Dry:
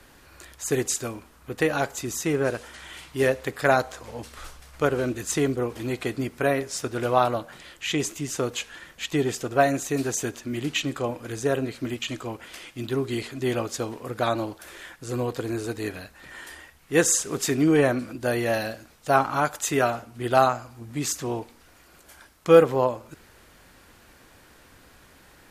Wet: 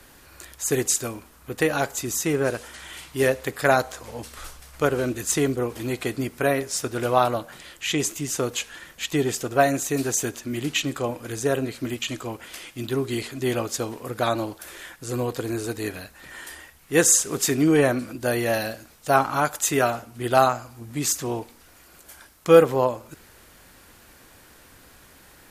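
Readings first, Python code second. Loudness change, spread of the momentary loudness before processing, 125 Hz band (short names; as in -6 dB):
+1.5 dB, 18 LU, +1.0 dB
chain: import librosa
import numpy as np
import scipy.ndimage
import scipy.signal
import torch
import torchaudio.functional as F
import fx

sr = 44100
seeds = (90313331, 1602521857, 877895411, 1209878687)

y = fx.high_shelf(x, sr, hz=7600.0, db=8.0)
y = y * librosa.db_to_amplitude(1.0)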